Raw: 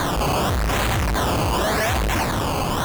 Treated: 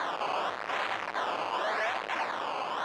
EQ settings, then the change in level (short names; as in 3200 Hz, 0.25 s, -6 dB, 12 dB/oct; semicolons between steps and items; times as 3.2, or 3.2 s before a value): BPF 630–2900 Hz; -6.5 dB